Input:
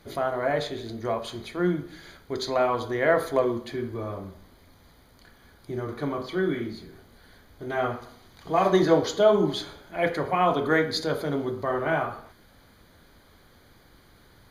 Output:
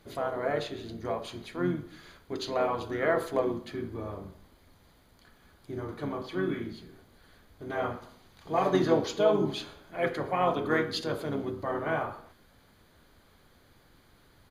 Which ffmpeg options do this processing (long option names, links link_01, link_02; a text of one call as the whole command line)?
ffmpeg -i in.wav -filter_complex "[0:a]asplit=2[link_01][link_02];[link_02]asetrate=33038,aresample=44100,atempo=1.33484,volume=-7dB[link_03];[link_01][link_03]amix=inputs=2:normalize=0,volume=-5.5dB" out.wav